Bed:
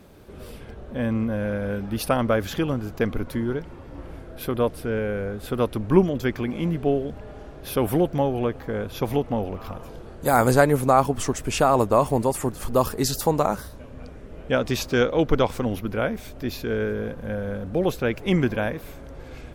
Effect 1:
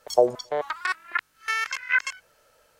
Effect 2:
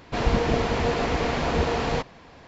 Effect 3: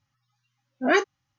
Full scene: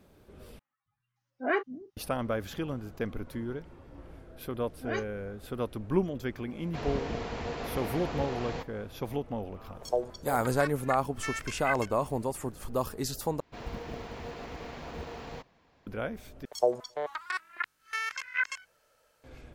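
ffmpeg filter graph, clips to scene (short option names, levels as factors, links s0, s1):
-filter_complex "[3:a]asplit=2[s0][s1];[2:a]asplit=2[s2][s3];[1:a]asplit=2[s4][s5];[0:a]volume=0.316[s6];[s0]acrossover=split=230|2700[s7][s8][s9];[s7]adelay=270[s10];[s9]adelay=570[s11];[s10][s8][s11]amix=inputs=3:normalize=0[s12];[s3]acrusher=bits=8:mode=log:mix=0:aa=0.000001[s13];[s6]asplit=4[s14][s15][s16][s17];[s14]atrim=end=0.594[s18];[s12]atrim=end=1.38,asetpts=PTS-STARTPTS,volume=0.473[s19];[s15]atrim=start=1.966:end=13.404[s20];[s13]atrim=end=2.47,asetpts=PTS-STARTPTS,volume=0.141[s21];[s16]atrim=start=15.866:end=16.454[s22];[s5]atrim=end=2.79,asetpts=PTS-STARTPTS,volume=0.447[s23];[s17]atrim=start=19.236[s24];[s1]atrim=end=1.38,asetpts=PTS-STARTPTS,volume=0.178,afade=t=in:d=0.004:c=hsin,afade=t=out:st=1.376:d=0.004:c=hsin,adelay=4000[s25];[s2]atrim=end=2.47,asetpts=PTS-STARTPTS,volume=0.251,afade=t=in:d=0.004:c=hsin,afade=t=out:st=2.466:d=0.004:c=hsin,adelay=6610[s26];[s4]atrim=end=2.79,asetpts=PTS-STARTPTS,volume=0.299,afade=t=in:d=0.004:c=hsin,afade=t=out:st=2.786:d=0.004:c=hsin,adelay=9750[s27];[s18][s19]acrossfade=d=0.004:c1=hsin:c2=hsin[s28];[s28][s20]acrossfade=d=0.004:c1=hsin:c2=hsin[s29];[s29][s21]acrossfade=d=0.004:c1=hsin:c2=hsin[s30];[s30][s22]acrossfade=d=0.004:c1=hsin:c2=hsin[s31];[s31][s23]acrossfade=d=0.004:c1=hsin:c2=hsin[s32];[s32][s24]acrossfade=d=0.004:c1=hsin:c2=hsin[s33];[s33][s25][s26][s27]amix=inputs=4:normalize=0"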